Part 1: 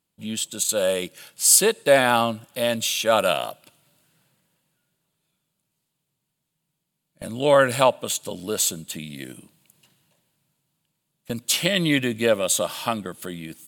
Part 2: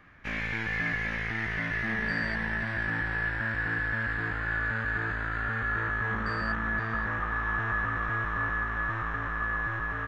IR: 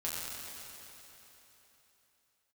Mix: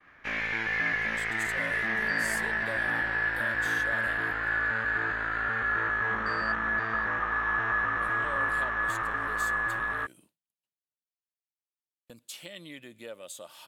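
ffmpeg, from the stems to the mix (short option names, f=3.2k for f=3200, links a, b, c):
-filter_complex "[0:a]lowshelf=f=120:g=11,acompressor=threshold=-37dB:ratio=2,adelay=800,volume=-10.5dB[a];[1:a]volume=2.5dB[b];[a][b]amix=inputs=2:normalize=0,agate=range=-33dB:threshold=-51dB:ratio=3:detection=peak,bass=f=250:g=-12,treble=f=4k:g=-1"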